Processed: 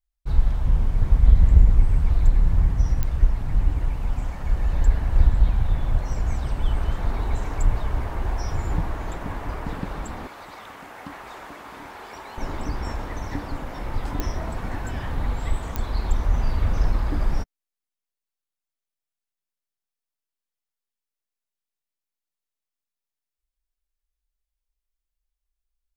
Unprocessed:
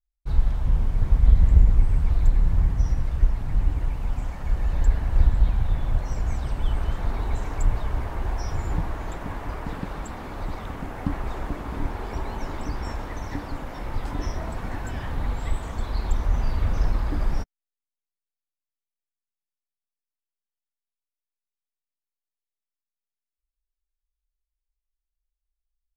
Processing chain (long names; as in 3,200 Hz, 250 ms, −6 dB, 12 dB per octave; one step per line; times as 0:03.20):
0:10.27–0:12.38: high-pass filter 1,100 Hz 6 dB per octave
digital clicks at 0:03.03/0:14.20/0:15.76, −13 dBFS
level +1.5 dB